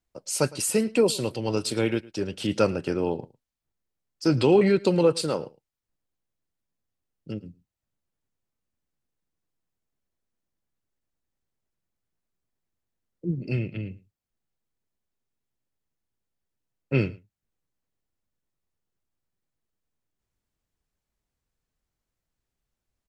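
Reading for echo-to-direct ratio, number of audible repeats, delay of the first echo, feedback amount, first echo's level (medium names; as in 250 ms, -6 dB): -21.5 dB, 1, 109 ms, no regular repeats, -21.5 dB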